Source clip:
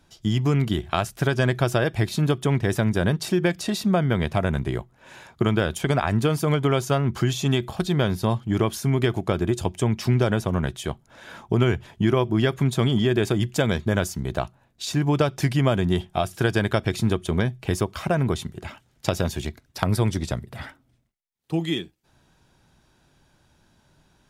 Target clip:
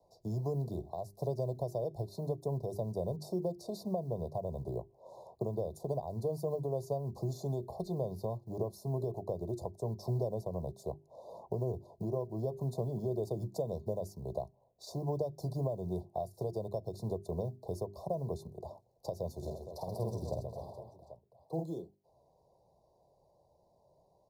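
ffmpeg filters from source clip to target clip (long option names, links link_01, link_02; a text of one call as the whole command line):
ffmpeg -i in.wav -filter_complex "[0:a]aecho=1:1:1.7:0.49,acrusher=bits=8:mode=log:mix=0:aa=0.000001,highpass=frequency=61:poles=1,bandreject=frequency=50:width_type=h:width=6,bandreject=frequency=100:width_type=h:width=6,bandreject=frequency=150:width_type=h:width=6,bandreject=frequency=200:width_type=h:width=6,bandreject=frequency=250:width_type=h:width=6,bandreject=frequency=300:width_type=h:width=6,bandreject=frequency=350:width_type=h:width=6,bandreject=frequency=400:width_type=h:width=6,alimiter=limit=-13.5dB:level=0:latency=1:release=397,equalizer=frequency=250:width_type=o:width=1:gain=-10,equalizer=frequency=500:width_type=o:width=1:gain=3,equalizer=frequency=2000:width_type=o:width=1:gain=-9,equalizer=frequency=4000:width_type=o:width=1:gain=-4,equalizer=frequency=8000:width_type=o:width=1:gain=-7,asplit=3[link_01][link_02][link_03];[link_01]afade=type=out:start_time=19.41:duration=0.02[link_04];[link_02]aecho=1:1:50|130|258|462.8|790.5:0.631|0.398|0.251|0.158|0.1,afade=type=in:start_time=19.41:duration=0.02,afade=type=out:start_time=21.62:duration=0.02[link_05];[link_03]afade=type=in:start_time=21.62:duration=0.02[link_06];[link_04][link_05][link_06]amix=inputs=3:normalize=0,acrossover=split=290|3000[link_07][link_08][link_09];[link_08]acompressor=threshold=-43dB:ratio=2[link_10];[link_07][link_10][link_09]amix=inputs=3:normalize=0,asuperstop=centerf=2000:order=20:qfactor=0.68,acrossover=split=220 2700:gain=0.224 1 0.2[link_11][link_12][link_13];[link_11][link_12][link_13]amix=inputs=3:normalize=0" out.wav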